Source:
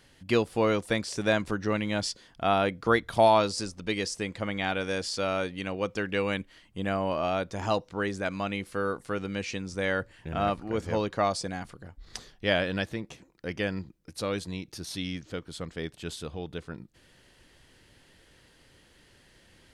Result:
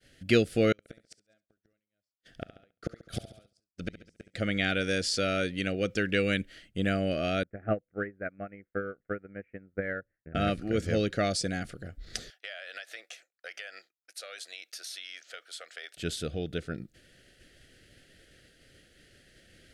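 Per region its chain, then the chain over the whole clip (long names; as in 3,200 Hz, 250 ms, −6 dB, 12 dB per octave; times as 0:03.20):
0:00.72–0:04.34: gate with flip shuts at −24 dBFS, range −40 dB + repeating echo 69 ms, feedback 57%, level −13 dB
0:07.43–0:10.35: Butterworth low-pass 2,100 Hz 48 dB per octave + transient designer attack +5 dB, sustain −5 dB + expander for the loud parts 2.5 to 1, over −36 dBFS
0:12.30–0:15.97: high-pass filter 720 Hz 24 dB per octave + downward compressor 16 to 1, threshold −40 dBFS
whole clip: Chebyshev band-stop filter 670–1,400 Hz, order 2; downward expander −55 dBFS; dynamic equaliser 750 Hz, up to −7 dB, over −40 dBFS, Q 0.94; level +4.5 dB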